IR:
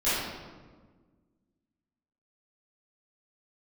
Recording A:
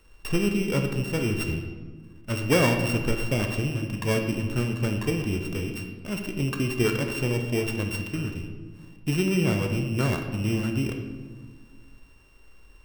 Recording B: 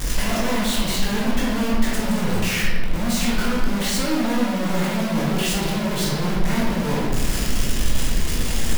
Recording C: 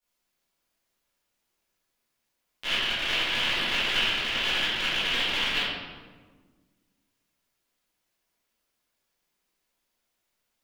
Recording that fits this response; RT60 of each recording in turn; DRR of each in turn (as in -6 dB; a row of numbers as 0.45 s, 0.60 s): C; 1.5 s, 1.5 s, 1.5 s; 3.5 dB, -6.0 dB, -15.0 dB